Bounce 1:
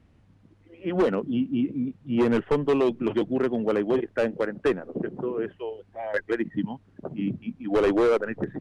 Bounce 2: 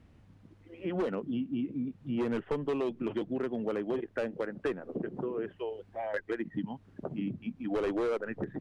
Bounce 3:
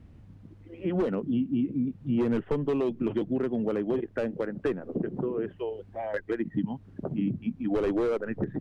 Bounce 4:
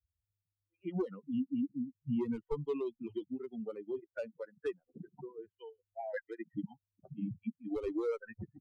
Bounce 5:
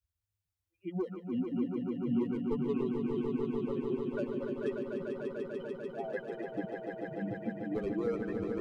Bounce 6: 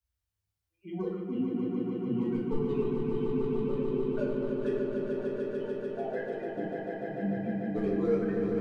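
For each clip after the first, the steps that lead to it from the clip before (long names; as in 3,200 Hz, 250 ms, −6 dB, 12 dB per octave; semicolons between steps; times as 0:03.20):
downward compressor 2.5 to 1, threshold −34 dBFS, peak gain reduction 10 dB
low-shelf EQ 370 Hz +9 dB
spectral dynamics exaggerated over time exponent 3; level −3 dB
echo that builds up and dies away 147 ms, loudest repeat 5, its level −6 dB
rectangular room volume 310 cubic metres, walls mixed, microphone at 1.6 metres; level −2.5 dB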